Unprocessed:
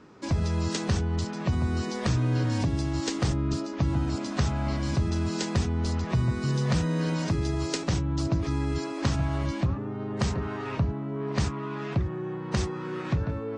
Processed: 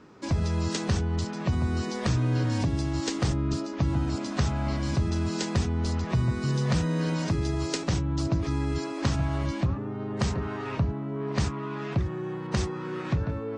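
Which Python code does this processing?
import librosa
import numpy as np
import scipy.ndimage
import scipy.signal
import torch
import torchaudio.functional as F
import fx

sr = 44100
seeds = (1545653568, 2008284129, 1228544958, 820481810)

y = fx.high_shelf(x, sr, hz=3800.0, db=9.5, at=(11.98, 12.47))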